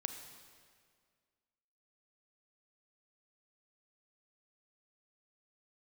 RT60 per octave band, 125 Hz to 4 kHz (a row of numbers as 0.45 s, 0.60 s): 2.0 s, 2.0 s, 2.0 s, 1.9 s, 1.8 s, 1.6 s